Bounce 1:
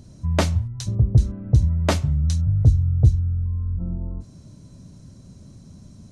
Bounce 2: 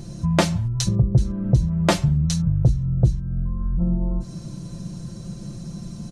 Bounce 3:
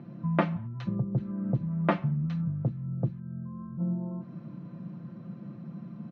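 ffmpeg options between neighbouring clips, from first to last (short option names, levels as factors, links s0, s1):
-af "aecho=1:1:5.8:0.87,acompressor=threshold=0.0355:ratio=2,volume=2.66"
-af "highpass=f=140:w=0.5412,highpass=f=140:w=1.3066,equalizer=f=250:t=q:w=4:g=7,equalizer=f=380:t=q:w=4:g=-3,equalizer=f=1200:t=q:w=4:g=5,lowpass=f=2400:w=0.5412,lowpass=f=2400:w=1.3066,volume=0.447"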